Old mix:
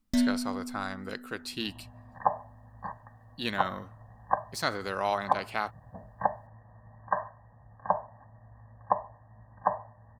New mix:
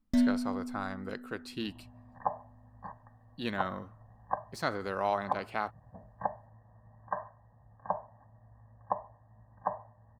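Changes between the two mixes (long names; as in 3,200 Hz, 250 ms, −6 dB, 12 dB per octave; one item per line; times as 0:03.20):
second sound −4.5 dB
master: add high-shelf EQ 2,100 Hz −10 dB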